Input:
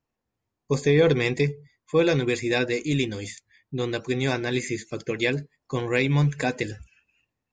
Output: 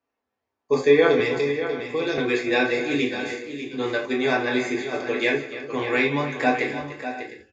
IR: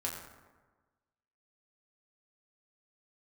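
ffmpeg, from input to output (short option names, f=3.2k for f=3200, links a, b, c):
-filter_complex "[0:a]acrossover=split=300 7000:gain=0.126 1 0.2[a][b][c];[a][b][c]amix=inputs=3:normalize=0[d];[1:a]atrim=start_sample=2205,atrim=end_sample=3969[e];[d][e]afir=irnorm=-1:irlink=0,asettb=1/sr,asplit=3[f][g][h];[f]atrim=end=1.204[i];[g]atrim=start=1.2:end=2.18,asetpts=PTS-STARTPTS,afade=t=in:d=0.004:c=qsin,afade=t=out:st=0.976:d=0.004:c=qsin,acrossover=split=270|3000[j][k][l];[k]acompressor=threshold=-31dB:ratio=4[m];[j][m][l]amix=inputs=3:normalize=0[n];[h]atrim=start=2.176[o];[i][n]acrossfade=d=0.004:c1=hsin:c2=qsin[p];[p][o]acrossfade=d=0.004:c1=qsin:c2=hsin,highshelf=f=4.9k:g=-9.5,aecho=1:1:165|294|597|707:0.126|0.211|0.316|0.15,volume=4dB"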